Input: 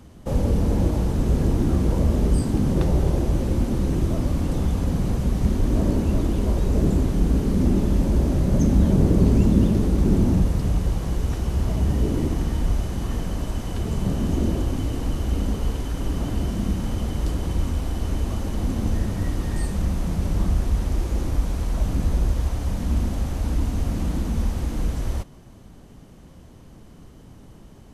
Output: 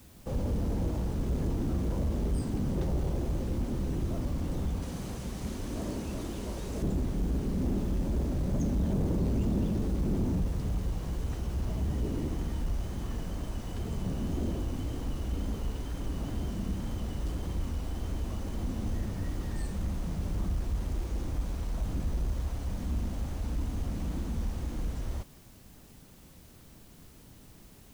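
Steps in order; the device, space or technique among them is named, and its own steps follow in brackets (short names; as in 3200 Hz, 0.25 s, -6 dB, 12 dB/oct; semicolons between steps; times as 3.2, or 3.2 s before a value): 4.82–6.83 tilt +2 dB/oct; compact cassette (soft clip -13.5 dBFS, distortion -17 dB; LPF 10000 Hz; wow and flutter; white noise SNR 29 dB); gain -8.5 dB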